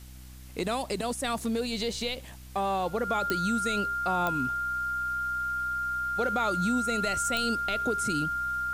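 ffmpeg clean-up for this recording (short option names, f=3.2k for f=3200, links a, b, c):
-af "adeclick=t=4,bandreject=f=63.3:t=h:w=4,bandreject=f=126.6:t=h:w=4,bandreject=f=189.9:t=h:w=4,bandreject=f=253.2:t=h:w=4,bandreject=f=316.5:t=h:w=4,bandreject=f=1.4k:w=30,afwtdn=0.002"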